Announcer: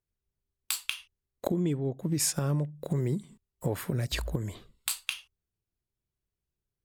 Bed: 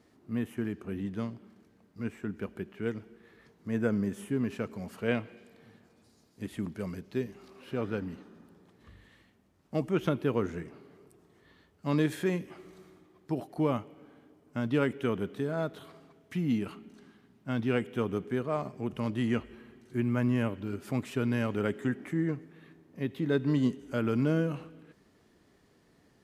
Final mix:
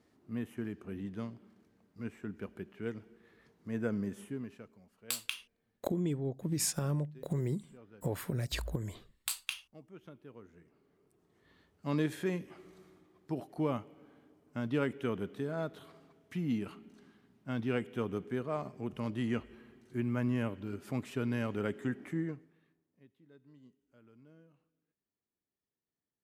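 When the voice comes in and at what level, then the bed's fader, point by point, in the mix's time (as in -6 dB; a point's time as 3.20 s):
4.40 s, -4.5 dB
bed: 4.20 s -5.5 dB
4.88 s -23.5 dB
10.47 s -23.5 dB
11.55 s -4.5 dB
22.17 s -4.5 dB
23.18 s -32.5 dB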